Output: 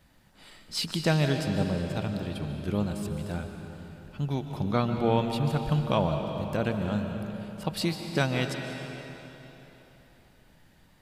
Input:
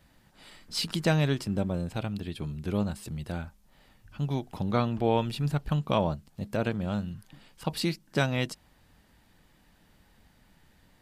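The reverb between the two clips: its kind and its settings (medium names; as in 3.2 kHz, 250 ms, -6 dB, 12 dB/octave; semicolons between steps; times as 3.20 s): algorithmic reverb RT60 3.6 s, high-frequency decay 0.9×, pre-delay 100 ms, DRR 5 dB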